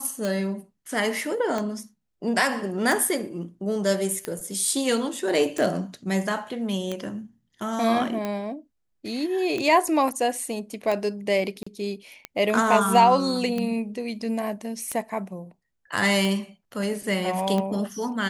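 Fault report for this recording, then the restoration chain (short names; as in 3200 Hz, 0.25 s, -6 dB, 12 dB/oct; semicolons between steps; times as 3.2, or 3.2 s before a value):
tick 45 rpm -15 dBFS
11.63–11.66 gap 35 ms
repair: de-click; interpolate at 11.63, 35 ms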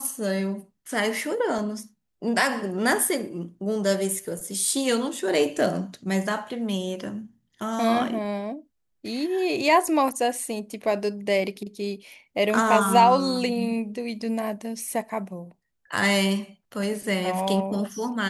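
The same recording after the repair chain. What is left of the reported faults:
none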